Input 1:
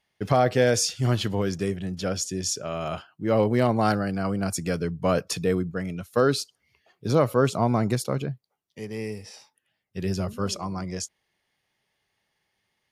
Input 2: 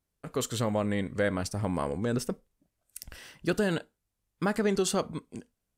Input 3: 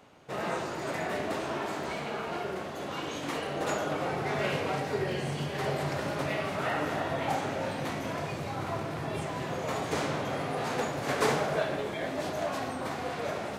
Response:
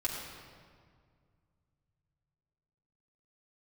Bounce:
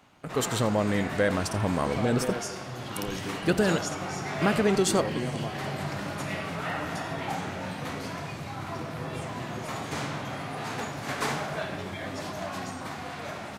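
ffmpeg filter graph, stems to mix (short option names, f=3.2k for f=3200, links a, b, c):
-filter_complex "[0:a]acompressor=threshold=-25dB:ratio=6,adelay=1650,volume=-7.5dB,asplit=2[a][b];[b]volume=-8dB[c];[1:a]volume=3dB,asplit=3[d][e][f];[e]volume=-16.5dB[g];[2:a]equalizer=f=470:w=1.6:g=-9,volume=0dB[h];[f]apad=whole_len=642158[i];[a][i]sidechaingate=range=-33dB:threshold=-45dB:ratio=16:detection=peak[j];[3:a]atrim=start_sample=2205[k];[c][k]afir=irnorm=-1:irlink=0[l];[g]aecho=0:1:85:1[m];[j][d][h][l][m]amix=inputs=5:normalize=0"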